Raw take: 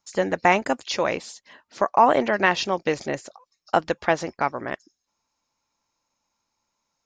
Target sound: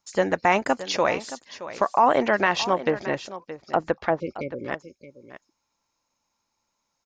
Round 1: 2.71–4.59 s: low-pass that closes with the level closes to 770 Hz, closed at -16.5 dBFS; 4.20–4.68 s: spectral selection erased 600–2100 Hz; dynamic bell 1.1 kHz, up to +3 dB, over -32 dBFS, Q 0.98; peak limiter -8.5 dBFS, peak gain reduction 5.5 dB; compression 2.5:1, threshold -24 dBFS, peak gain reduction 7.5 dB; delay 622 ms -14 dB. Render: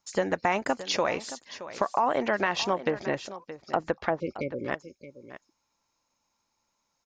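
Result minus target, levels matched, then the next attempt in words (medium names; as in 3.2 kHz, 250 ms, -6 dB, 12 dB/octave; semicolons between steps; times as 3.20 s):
compression: peak gain reduction +7.5 dB
2.71–4.59 s: low-pass that closes with the level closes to 770 Hz, closed at -16.5 dBFS; 4.20–4.68 s: spectral selection erased 600–2100 Hz; dynamic bell 1.1 kHz, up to +3 dB, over -32 dBFS, Q 0.98; peak limiter -8.5 dBFS, peak gain reduction 5.5 dB; delay 622 ms -14 dB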